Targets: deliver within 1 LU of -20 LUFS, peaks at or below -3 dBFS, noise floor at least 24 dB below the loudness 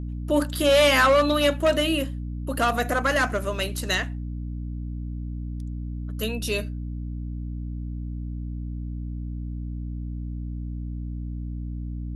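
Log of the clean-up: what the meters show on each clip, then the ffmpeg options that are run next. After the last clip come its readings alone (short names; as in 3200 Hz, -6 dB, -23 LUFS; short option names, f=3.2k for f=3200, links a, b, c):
hum 60 Hz; harmonics up to 300 Hz; hum level -29 dBFS; loudness -26.0 LUFS; peak -8.5 dBFS; loudness target -20.0 LUFS
-> -af "bandreject=f=60:t=h:w=4,bandreject=f=120:t=h:w=4,bandreject=f=180:t=h:w=4,bandreject=f=240:t=h:w=4,bandreject=f=300:t=h:w=4"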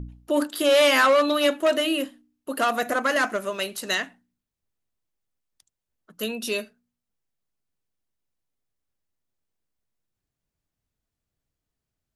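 hum none; loudness -22.5 LUFS; peak -9.0 dBFS; loudness target -20.0 LUFS
-> -af "volume=2.5dB"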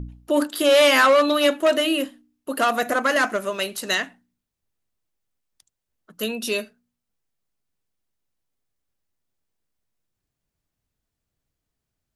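loudness -20.0 LUFS; peak -6.5 dBFS; noise floor -83 dBFS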